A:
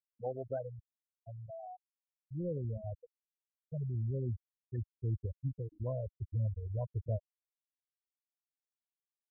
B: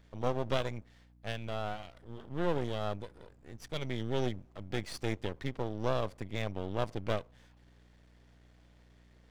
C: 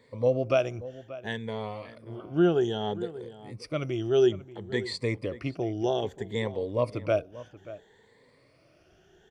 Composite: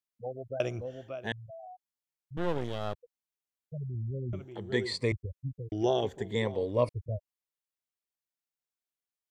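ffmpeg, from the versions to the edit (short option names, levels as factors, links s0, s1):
-filter_complex "[2:a]asplit=3[s0][s1][s2];[0:a]asplit=5[s3][s4][s5][s6][s7];[s3]atrim=end=0.602[s8];[s0]atrim=start=0.598:end=1.322[s9];[s4]atrim=start=1.318:end=2.372[s10];[1:a]atrim=start=2.368:end=2.942[s11];[s5]atrim=start=2.938:end=4.332[s12];[s1]atrim=start=4.328:end=5.122[s13];[s6]atrim=start=5.118:end=5.722[s14];[s2]atrim=start=5.718:end=6.892[s15];[s7]atrim=start=6.888[s16];[s8][s9]acrossfade=d=0.004:c1=hsin:c2=hsin[s17];[s17][s10]acrossfade=d=0.004:c1=hsin:c2=hsin[s18];[s18][s11]acrossfade=d=0.004:c1=hsin:c2=hsin[s19];[s19][s12]acrossfade=d=0.004:c1=hsin:c2=hsin[s20];[s20][s13]acrossfade=d=0.004:c1=hsin:c2=hsin[s21];[s21][s14]acrossfade=d=0.004:c1=hsin:c2=hsin[s22];[s22][s15]acrossfade=d=0.004:c1=hsin:c2=hsin[s23];[s23][s16]acrossfade=d=0.004:c1=hsin:c2=hsin"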